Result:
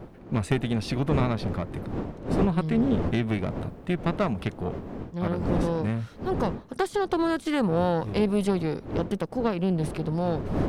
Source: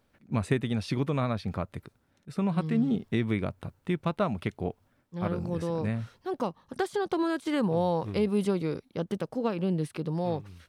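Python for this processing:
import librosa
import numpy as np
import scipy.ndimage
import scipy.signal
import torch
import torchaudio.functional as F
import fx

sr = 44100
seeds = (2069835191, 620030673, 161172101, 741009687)

y = fx.diode_clip(x, sr, knee_db=-27.0)
y = fx.dmg_wind(y, sr, seeds[0], corner_hz=340.0, level_db=-38.0)
y = y * librosa.db_to_amplitude(4.5)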